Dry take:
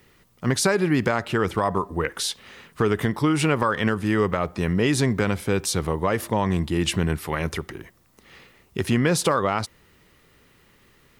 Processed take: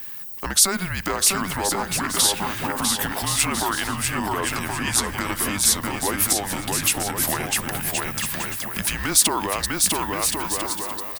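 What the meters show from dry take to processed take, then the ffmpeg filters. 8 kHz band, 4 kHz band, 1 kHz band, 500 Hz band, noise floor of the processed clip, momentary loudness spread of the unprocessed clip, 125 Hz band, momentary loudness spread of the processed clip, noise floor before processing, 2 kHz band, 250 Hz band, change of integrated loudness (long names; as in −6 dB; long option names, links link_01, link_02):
+13.0 dB, +7.5 dB, +1.5 dB, −6.5 dB, −33 dBFS, 8 LU, −7.0 dB, 8 LU, −59 dBFS, +2.0 dB, −5.0 dB, +2.0 dB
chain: -filter_complex "[0:a]acompressor=threshold=-31dB:ratio=2,afreqshift=-190,asplit=2[link_01][link_02];[link_02]aecho=0:1:650|1072|1347|1526|1642:0.631|0.398|0.251|0.158|0.1[link_03];[link_01][link_03]amix=inputs=2:normalize=0,alimiter=limit=-21dB:level=0:latency=1:release=84,aemphasis=mode=production:type=bsi,volume=9dB"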